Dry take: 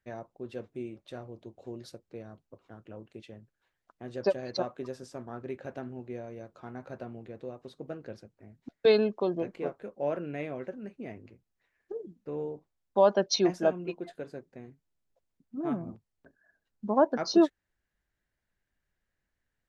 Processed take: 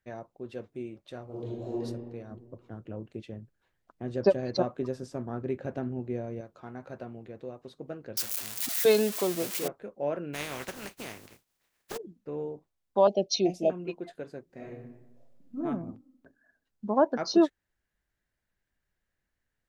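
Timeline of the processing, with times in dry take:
1.25–1.81 reverb throw, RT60 1.4 s, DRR -8.5 dB
2.31–6.41 low shelf 480 Hz +9 dB
8.17–9.68 switching spikes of -21 dBFS
10.33–11.96 spectral contrast lowered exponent 0.35
13.07–13.7 elliptic band-stop 730–2400 Hz, stop band 60 dB
14.45–15.58 reverb throw, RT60 1 s, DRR -6.5 dB

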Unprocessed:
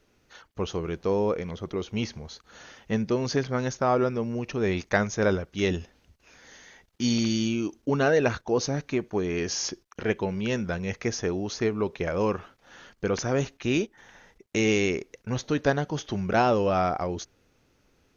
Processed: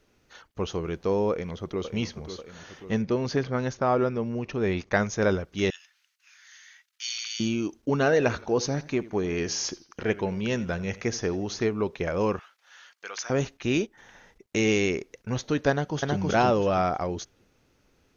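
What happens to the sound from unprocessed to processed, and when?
1.3–1.92 echo throw 0.54 s, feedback 60%, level -9.5 dB
3.02–4.97 air absorption 90 m
5.7–7.4 HPF 1400 Hz 24 dB/oct
8.02–11.65 warbling echo 84 ms, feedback 37%, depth 115 cents, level -19 dB
12.39–13.3 HPF 1300 Hz
15.7–16.18 echo throw 0.32 s, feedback 25%, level -1 dB

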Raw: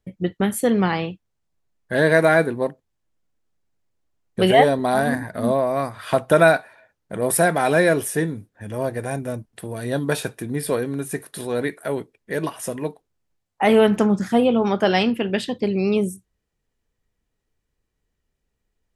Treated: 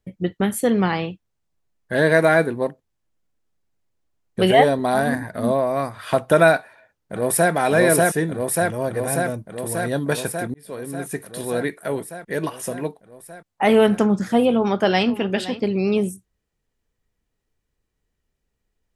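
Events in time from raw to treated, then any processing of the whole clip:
6.57–7.52 echo throw 0.59 s, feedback 75%, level -0.5 dB
10.54–11.21 fade in
14.52–15.07 echo throw 0.52 s, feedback 15%, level -14.5 dB

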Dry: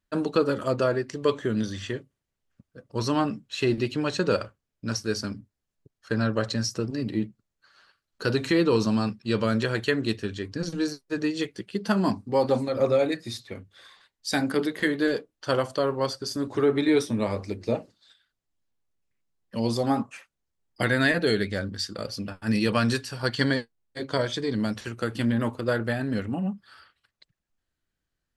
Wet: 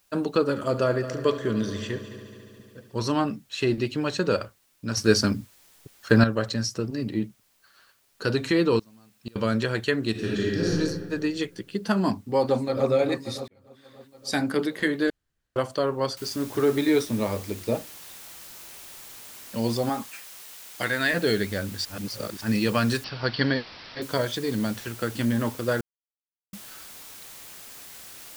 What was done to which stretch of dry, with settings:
0.48–3.12 multi-head echo 71 ms, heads first and third, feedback 70%, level -15 dB
4.97–6.24 gain +9 dB
8.79–9.36 flipped gate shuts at -21 dBFS, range -30 dB
10.11–10.69 reverb throw, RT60 1.8 s, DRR -6 dB
12.4–12.88 echo throw 0.29 s, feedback 65%, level -8.5 dB
13.48–14.41 fade in
15.1–15.56 room tone
16.17 noise floor step -66 dB -44 dB
19.89–21.13 low shelf 440 Hz -10 dB
21.85–22.41 reverse
23.04–24.02 careless resampling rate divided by 4×, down none, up filtered
25.81–26.53 mute

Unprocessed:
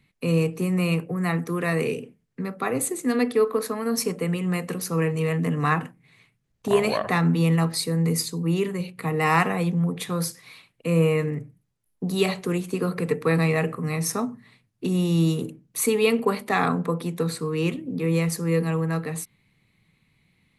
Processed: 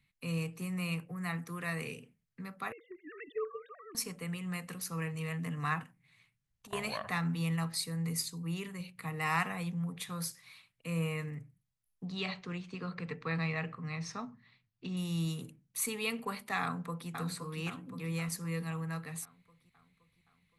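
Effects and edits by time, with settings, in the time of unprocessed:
2.72–3.95 sine-wave speech
5.83–6.73 compressor, threshold -37 dBFS
12.05–14.97 LPF 5200 Hz 24 dB/oct
16.62–17.09 echo throw 0.52 s, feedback 55%, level -5.5 dB
whole clip: bell 380 Hz -13 dB 1.7 oct; gain -8 dB

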